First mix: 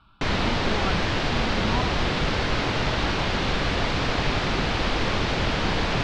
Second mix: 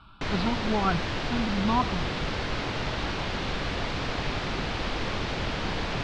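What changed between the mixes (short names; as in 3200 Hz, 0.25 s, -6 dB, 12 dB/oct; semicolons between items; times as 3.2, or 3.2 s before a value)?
speech +5.5 dB; background -6.0 dB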